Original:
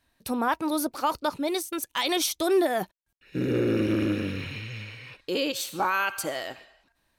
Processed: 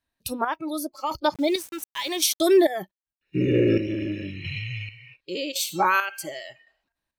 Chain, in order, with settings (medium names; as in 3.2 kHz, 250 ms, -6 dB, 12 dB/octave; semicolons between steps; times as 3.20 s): spectral noise reduction 18 dB; square tremolo 0.9 Hz, depth 60%, duty 40%; 1.34–2.65 s: small samples zeroed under -44.5 dBFS; trim +5.5 dB